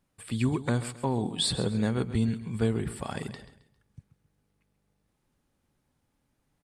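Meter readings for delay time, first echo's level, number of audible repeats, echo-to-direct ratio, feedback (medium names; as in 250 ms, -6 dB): 134 ms, -14.0 dB, 3, -13.5 dB, 36%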